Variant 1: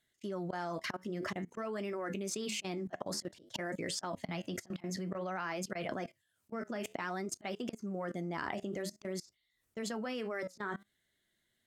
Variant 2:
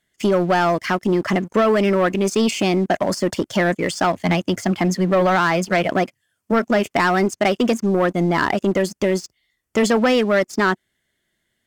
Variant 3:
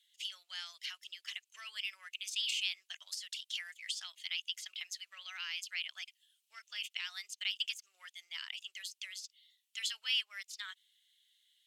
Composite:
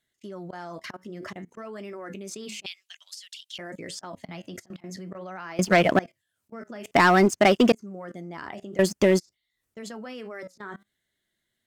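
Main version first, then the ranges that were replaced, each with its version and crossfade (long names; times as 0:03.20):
1
0:02.66–0:03.58: punch in from 3
0:05.59–0:05.99: punch in from 2
0:06.91–0:07.72: punch in from 2
0:08.79–0:09.19: punch in from 2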